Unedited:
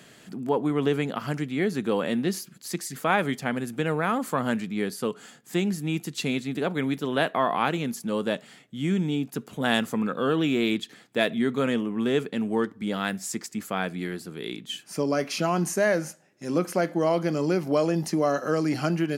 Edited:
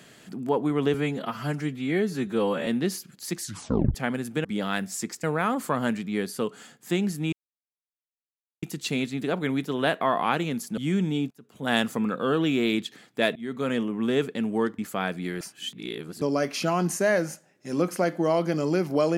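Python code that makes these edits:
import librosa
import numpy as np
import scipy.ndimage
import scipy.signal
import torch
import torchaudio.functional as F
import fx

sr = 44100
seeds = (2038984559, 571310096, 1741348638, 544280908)

y = fx.edit(x, sr, fx.stretch_span(start_s=0.94, length_s=1.15, factor=1.5),
    fx.tape_stop(start_s=2.83, length_s=0.54),
    fx.insert_silence(at_s=5.96, length_s=1.3),
    fx.cut(start_s=8.11, length_s=0.64),
    fx.fade_in_from(start_s=9.28, length_s=0.42, curve='qua', floor_db=-23.5),
    fx.fade_in_from(start_s=11.33, length_s=0.6, curve='qsin', floor_db=-19.5),
    fx.move(start_s=12.76, length_s=0.79, to_s=3.87),
    fx.reverse_span(start_s=14.17, length_s=0.81), tone=tone)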